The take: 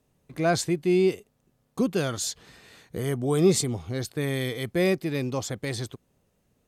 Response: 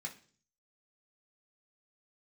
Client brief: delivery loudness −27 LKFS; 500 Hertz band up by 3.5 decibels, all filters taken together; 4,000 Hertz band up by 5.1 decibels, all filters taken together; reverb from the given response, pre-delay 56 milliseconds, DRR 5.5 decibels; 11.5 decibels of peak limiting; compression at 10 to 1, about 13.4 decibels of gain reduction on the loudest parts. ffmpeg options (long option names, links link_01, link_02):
-filter_complex "[0:a]equalizer=frequency=500:width_type=o:gain=5,equalizer=frequency=4000:width_type=o:gain=6,acompressor=threshold=-25dB:ratio=10,alimiter=level_in=4dB:limit=-24dB:level=0:latency=1,volume=-4dB,asplit=2[link_01][link_02];[1:a]atrim=start_sample=2205,adelay=56[link_03];[link_02][link_03]afir=irnorm=-1:irlink=0,volume=-3.5dB[link_04];[link_01][link_04]amix=inputs=2:normalize=0,volume=9.5dB"